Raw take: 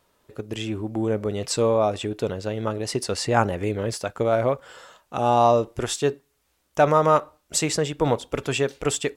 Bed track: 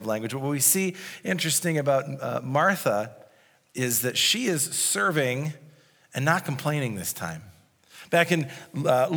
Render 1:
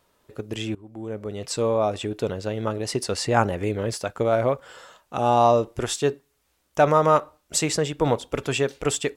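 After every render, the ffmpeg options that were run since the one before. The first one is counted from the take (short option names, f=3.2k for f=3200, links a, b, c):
-filter_complex "[0:a]asplit=2[a][b];[a]atrim=end=0.75,asetpts=PTS-STARTPTS,afade=t=out:st=0.746:d=0.004:c=hsin:silence=0.1[c];[b]atrim=start=0.75,asetpts=PTS-STARTPTS,afade=t=in:d=1.73:c=qsin:silence=0.1[d];[c][d]concat=n=2:v=0:a=1"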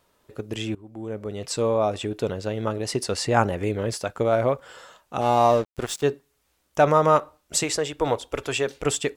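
-filter_complex "[0:a]asettb=1/sr,asplit=3[a][b][c];[a]atrim=end=5.214[d];[b]atrim=start=5.21:end=6.03,asetpts=PTS-STARTPTS,afade=t=in:d=0.004:c=qsin,afade=t=out:st=0.816:d=0.004:c=qsin,aeval=exprs='sgn(val(0))*max(abs(val(0))-0.0178,0)':c=same[e];[c]atrim=start=6.026[f];[d][e]acrossfade=d=0.004:c1=hsin:c2=qsin[g];[g][f]acrossfade=d=0.004:c1=qsin:c2=hsin,asettb=1/sr,asplit=3[h][i][j];[h]atrim=end=7.634[k];[i]atrim=start=7.63:end=8.67,asetpts=PTS-STARTPTS,afade=t=in:d=0.004:c=qsin,afade=t=out:st=1.036:d=0.004:c=qsin,equalizer=f=180:w=1.5:g=-12.5[l];[j]atrim=start=8.666[m];[k][l]acrossfade=d=0.004:c1=hsin:c2=qsin[n];[n][m]acrossfade=d=0.004:c1=qsin:c2=hsin"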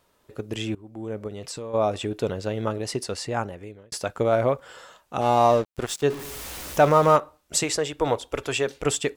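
-filter_complex "[0:a]asplit=3[a][b][c];[a]afade=t=out:st=1.27:d=0.02[d];[b]acompressor=threshold=-32dB:ratio=5:attack=3.2:release=140:knee=1:detection=peak,afade=t=in:st=1.27:d=0.02,afade=t=out:st=1.73:d=0.02[e];[c]afade=t=in:st=1.73:d=0.02[f];[d][e][f]amix=inputs=3:normalize=0,asettb=1/sr,asplit=3[g][h][i];[g]atrim=end=6.104[j];[h]atrim=start=6.1:end=7.16,asetpts=PTS-STARTPTS,afade=t=in:d=0.004:c=qsin,afade=t=out:st=1.056:d=0.004:c=qsin,aeval=exprs='val(0)+0.5*0.0299*sgn(val(0))':c=same[k];[i]atrim=start=7.156[l];[j][k]acrossfade=d=0.004:c1=hsin:c2=qsin[m];[m][l]acrossfade=d=0.004:c1=qsin:c2=hsin,asplit=2[n][o];[n]atrim=end=3.92,asetpts=PTS-STARTPTS,afade=t=out:st=2.63:d=1.29[p];[o]atrim=start=3.92,asetpts=PTS-STARTPTS,afade=t=in:d=0.004:c=hsin[q];[p][q]concat=n=2:v=0:a=1"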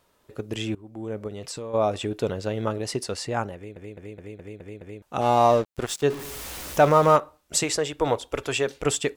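-filter_complex "[0:a]asplit=8[a][b][c][d][e][f][g][h];[a]atrim=end=3.762[i];[b]atrim=start=3.548:end=3.762[j];[c]atrim=start=3.548:end=3.762[k];[d]atrim=start=3.548:end=3.762[l];[e]atrim=start=3.548:end=3.762[m];[f]atrim=start=3.548:end=3.762[n];[g]atrim=start=3.548:end=3.762[o];[h]atrim=start=5.018[p];[i][j]acrossfade=d=0.004:c1=hsin:c2=hsin[q];[q][k]acrossfade=d=0.004:c1=hsin:c2=hsin[r];[r][l]acrossfade=d=0.004:c1=hsin:c2=hsin[s];[s][m]acrossfade=d=0.004:c1=hsin:c2=hsin[t];[t][n]acrossfade=d=0.004:c1=hsin:c2=hsin[u];[u][o]acrossfade=d=0.004:c1=hsin:c2=hsin[v];[v][p]acrossfade=d=0.004:c1=hsin:c2=hsin"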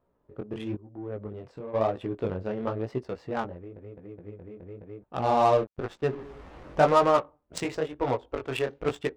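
-af "flanger=delay=15.5:depth=7.9:speed=0.99,adynamicsmooth=sensitivity=2.5:basefreq=940"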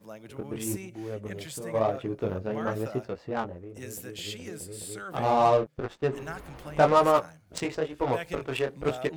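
-filter_complex "[1:a]volume=-16.5dB[a];[0:a][a]amix=inputs=2:normalize=0"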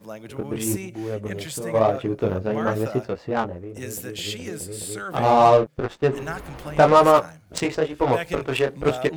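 -af "volume=7dB,alimiter=limit=-3dB:level=0:latency=1"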